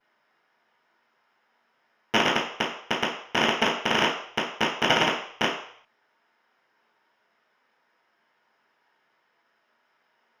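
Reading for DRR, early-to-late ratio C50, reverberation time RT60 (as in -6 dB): -13.0 dB, 5.0 dB, 0.60 s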